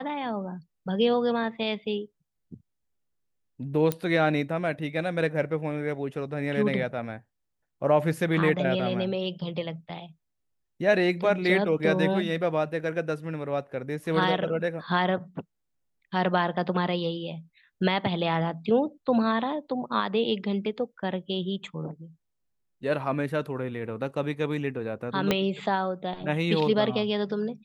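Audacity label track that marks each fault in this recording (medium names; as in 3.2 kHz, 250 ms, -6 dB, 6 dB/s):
3.920000	3.920000	pop -12 dBFS
25.310000	25.310000	pop -9 dBFS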